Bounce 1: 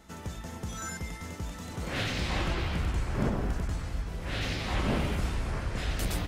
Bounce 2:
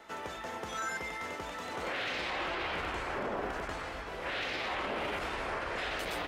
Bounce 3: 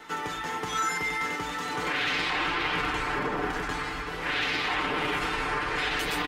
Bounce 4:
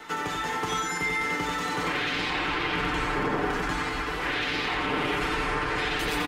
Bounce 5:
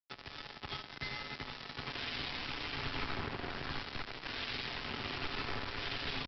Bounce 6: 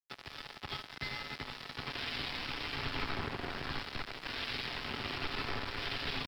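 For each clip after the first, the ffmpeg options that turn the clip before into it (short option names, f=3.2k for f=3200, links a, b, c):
-filter_complex "[0:a]acrossover=split=360 3600:gain=0.0708 1 0.224[a][b][c];[a][b][c]amix=inputs=3:normalize=0,alimiter=level_in=10dB:limit=-24dB:level=0:latency=1:release=36,volume=-10dB,volume=7dB"
-af "equalizer=f=610:t=o:w=0.43:g=-12,aecho=1:1:6.7:0.65,volume=7dB"
-filter_complex "[0:a]acrossover=split=490[a][b];[b]acompressor=threshold=-30dB:ratio=6[c];[a][c]amix=inputs=2:normalize=0,aecho=1:1:88:0.501,volume=3dB"
-filter_complex "[0:a]acrossover=split=180|3000[a][b][c];[b]acompressor=threshold=-56dB:ratio=1.5[d];[a][d][c]amix=inputs=3:normalize=0,aresample=11025,acrusher=bits=4:mix=0:aa=0.5,aresample=44100,afreqshift=-36,volume=-4.5dB"
-af "aeval=exprs='sgn(val(0))*max(abs(val(0))-0.00119,0)':c=same,volume=2dB"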